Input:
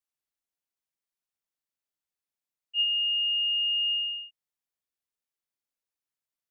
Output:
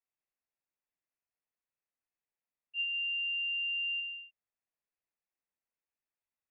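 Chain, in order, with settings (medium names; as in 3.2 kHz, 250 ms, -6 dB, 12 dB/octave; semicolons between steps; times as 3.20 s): 2.94–4.00 s: waveshaping leveller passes 2; frequency shift -54 Hz; rippled Chebyshev low-pass 2.7 kHz, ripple 3 dB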